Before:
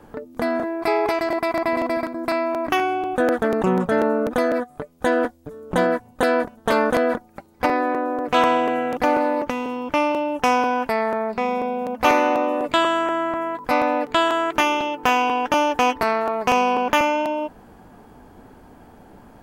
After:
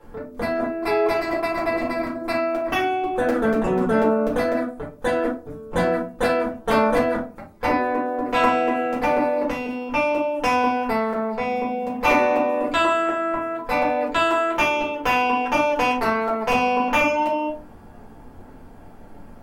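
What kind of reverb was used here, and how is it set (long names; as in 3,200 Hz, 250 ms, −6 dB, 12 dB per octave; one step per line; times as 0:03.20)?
rectangular room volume 160 cubic metres, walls furnished, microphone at 4.3 metres
level −9 dB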